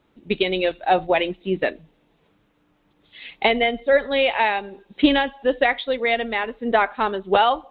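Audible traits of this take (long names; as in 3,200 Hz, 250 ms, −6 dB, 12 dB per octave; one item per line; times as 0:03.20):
background noise floor −64 dBFS
spectral slope −1.5 dB per octave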